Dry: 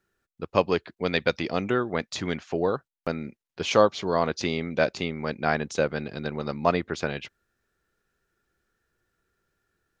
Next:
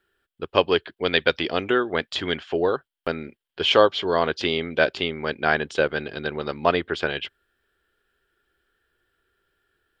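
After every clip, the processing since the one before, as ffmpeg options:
ffmpeg -i in.wav -af "equalizer=frequency=125:width_type=o:width=0.33:gain=-11,equalizer=frequency=200:width_type=o:width=0.33:gain=-9,equalizer=frequency=400:width_type=o:width=0.33:gain=4,equalizer=frequency=1600:width_type=o:width=0.33:gain=6,equalizer=frequency=3150:width_type=o:width=0.33:gain=12,equalizer=frequency=6300:width_type=o:width=0.33:gain=-12,volume=2dB" out.wav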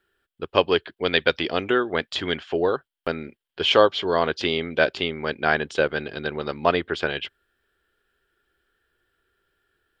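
ffmpeg -i in.wav -af anull out.wav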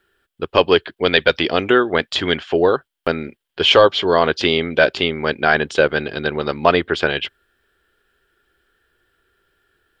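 ffmpeg -i in.wav -af "apsyclip=8.5dB,volume=-1.5dB" out.wav

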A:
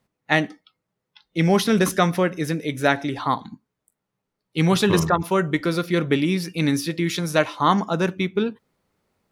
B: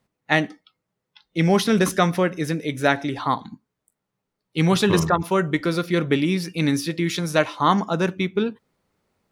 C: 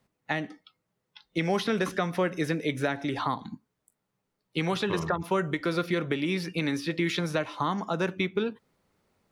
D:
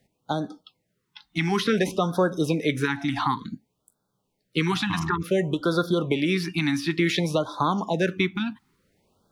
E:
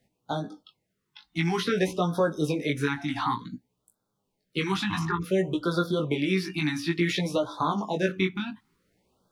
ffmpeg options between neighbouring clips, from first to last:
ffmpeg -i in.wav -af "equalizer=frequency=12000:width_type=o:width=0.27:gain=-3.5" out.wav
ffmpeg -i in.wav -filter_complex "[0:a]acrossover=split=370|4000[link_01][link_02][link_03];[link_01]acompressor=threshold=-30dB:ratio=4[link_04];[link_02]acompressor=threshold=-24dB:ratio=4[link_05];[link_03]acompressor=threshold=-48dB:ratio=4[link_06];[link_04][link_05][link_06]amix=inputs=3:normalize=0,alimiter=limit=-16dB:level=0:latency=1:release=298" out.wav
ffmpeg -i in.wav -af "afftfilt=real='re*(1-between(b*sr/1024,460*pow(2400/460,0.5+0.5*sin(2*PI*0.56*pts/sr))/1.41,460*pow(2400/460,0.5+0.5*sin(2*PI*0.56*pts/sr))*1.41))':imag='im*(1-between(b*sr/1024,460*pow(2400/460,0.5+0.5*sin(2*PI*0.56*pts/sr))/1.41,460*pow(2400/460,0.5+0.5*sin(2*PI*0.56*pts/sr))*1.41))':win_size=1024:overlap=0.75,volume=5dB" out.wav
ffmpeg -i in.wav -af "flanger=delay=16:depth=5.1:speed=0.55" out.wav

